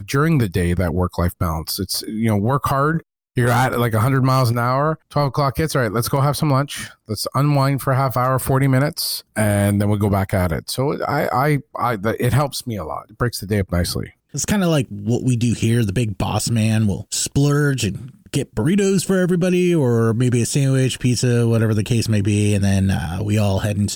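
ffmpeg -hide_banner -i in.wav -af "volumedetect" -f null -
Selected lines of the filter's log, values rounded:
mean_volume: -18.3 dB
max_volume: -7.6 dB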